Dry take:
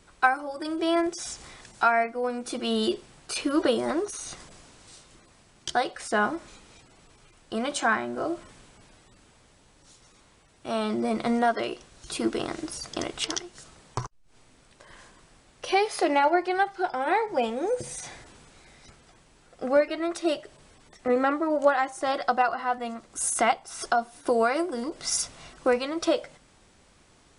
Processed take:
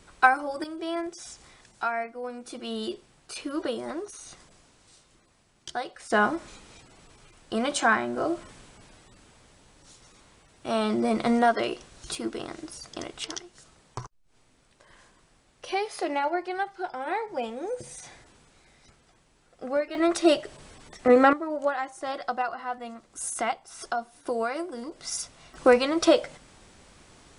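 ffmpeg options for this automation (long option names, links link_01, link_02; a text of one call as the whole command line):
ffmpeg -i in.wav -af "asetnsamples=nb_out_samples=441:pad=0,asendcmd='0.64 volume volume -7dB;6.1 volume volume 2dB;12.15 volume volume -5.5dB;19.95 volume volume 6dB;21.33 volume volume -5.5dB;25.54 volume volume 5dB',volume=2.5dB" out.wav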